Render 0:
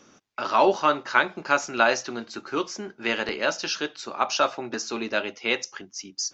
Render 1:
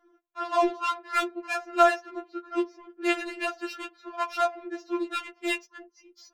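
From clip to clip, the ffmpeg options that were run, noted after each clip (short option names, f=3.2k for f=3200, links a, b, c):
-af "adynamicsmooth=sensitivity=1.5:basefreq=1.2k,lowshelf=f=110:g=-5,afftfilt=real='re*4*eq(mod(b,16),0)':imag='im*4*eq(mod(b,16),0)':win_size=2048:overlap=0.75"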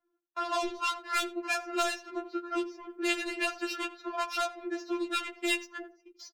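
-filter_complex "[0:a]agate=range=-22dB:threshold=-53dB:ratio=16:detection=peak,acrossover=split=140|3000[a][b][c];[b]acompressor=threshold=-35dB:ratio=6[d];[a][d][c]amix=inputs=3:normalize=0,asplit=2[e][f];[f]adelay=86,lowpass=f=1.4k:p=1,volume=-13dB,asplit=2[g][h];[h]adelay=86,lowpass=f=1.4k:p=1,volume=0.23,asplit=2[i][j];[j]adelay=86,lowpass=f=1.4k:p=1,volume=0.23[k];[e][g][i][k]amix=inputs=4:normalize=0,volume=4.5dB"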